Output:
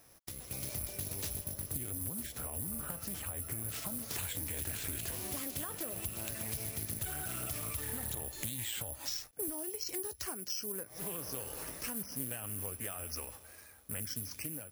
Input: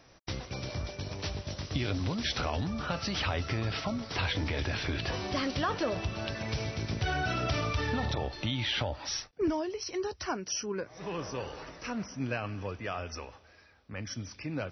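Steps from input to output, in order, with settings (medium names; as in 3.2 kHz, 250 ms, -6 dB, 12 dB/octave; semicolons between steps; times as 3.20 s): compression 8:1, threshold -40 dBFS, peak gain reduction 14.5 dB; dynamic bell 910 Hz, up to -4 dB, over -55 dBFS, Q 0.77; level rider gain up to 7.5 dB; 1.44–3.69 s: peaking EQ 4.1 kHz -9.5 dB 1.9 oct; careless resampling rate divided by 4×, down none, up zero stuff; loudspeaker Doppler distortion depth 0.41 ms; trim -7 dB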